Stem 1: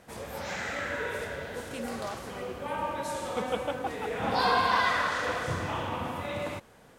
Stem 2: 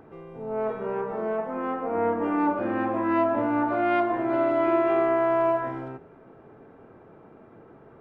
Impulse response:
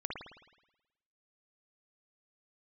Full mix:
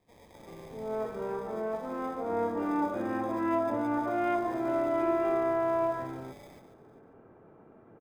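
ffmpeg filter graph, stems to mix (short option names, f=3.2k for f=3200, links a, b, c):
-filter_complex "[0:a]equalizer=f=2.5k:t=o:w=0.77:g=10,acrusher=samples=31:mix=1:aa=0.000001,acompressor=threshold=-31dB:ratio=6,volume=-17.5dB,asplit=2[a][b];[b]volume=-8.5dB[c];[1:a]aemphasis=mode=reproduction:type=75fm,adelay=350,volume=-6dB[d];[c]aecho=0:1:143:1[e];[a][d][e]amix=inputs=3:normalize=0"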